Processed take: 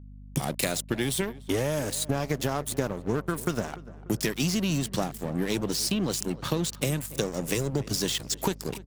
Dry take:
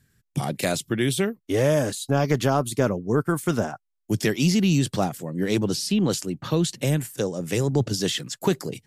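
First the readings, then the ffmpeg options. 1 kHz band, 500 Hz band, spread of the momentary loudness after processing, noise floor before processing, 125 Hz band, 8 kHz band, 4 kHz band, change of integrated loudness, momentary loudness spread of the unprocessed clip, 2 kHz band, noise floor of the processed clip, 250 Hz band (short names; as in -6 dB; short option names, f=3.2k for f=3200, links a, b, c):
-5.0 dB, -6.0 dB, 4 LU, -77 dBFS, -6.5 dB, 0.0 dB, -1.5 dB, -4.5 dB, 7 LU, -3.5 dB, -45 dBFS, -6.0 dB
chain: -filter_complex "[0:a]equalizer=f=7.3k:w=0.37:g=3,acompressor=threshold=-27dB:ratio=5,aeval=exprs='sgn(val(0))*max(abs(val(0))-0.0112,0)':c=same,highshelf=f=11k:g=6.5,acompressor=mode=upward:threshold=-34dB:ratio=2.5,aeval=exprs='val(0)+0.00398*(sin(2*PI*50*n/s)+sin(2*PI*2*50*n/s)/2+sin(2*PI*3*50*n/s)/3+sin(2*PI*4*50*n/s)/4+sin(2*PI*5*50*n/s)/5)':c=same,asplit=2[a][b];[b]adelay=294,lowpass=f=1.7k:p=1,volume=-17.5dB,asplit=2[c][d];[d]adelay=294,lowpass=f=1.7k:p=1,volume=0.5,asplit=2[e][f];[f]adelay=294,lowpass=f=1.7k:p=1,volume=0.5,asplit=2[g][h];[h]adelay=294,lowpass=f=1.7k:p=1,volume=0.5[i];[a][c][e][g][i]amix=inputs=5:normalize=0,volume=4dB"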